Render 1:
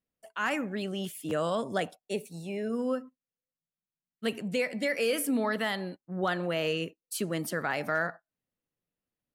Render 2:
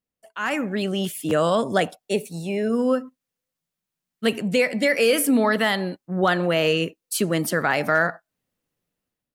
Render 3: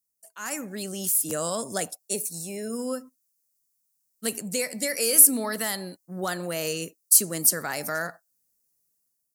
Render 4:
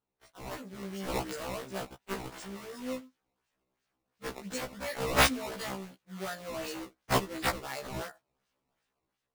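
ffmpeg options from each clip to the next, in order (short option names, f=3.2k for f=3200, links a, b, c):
-af "dynaudnorm=f=220:g=5:m=9.5dB"
-af "aexciter=amount=9.2:drive=6.1:freq=4.8k,volume=-10dB"
-af "acrusher=samples=16:mix=1:aa=0.000001:lfo=1:lforange=25.6:lforate=2.8,afftfilt=real='re*1.73*eq(mod(b,3),0)':imag='im*1.73*eq(mod(b,3),0)':win_size=2048:overlap=0.75,volume=-6.5dB"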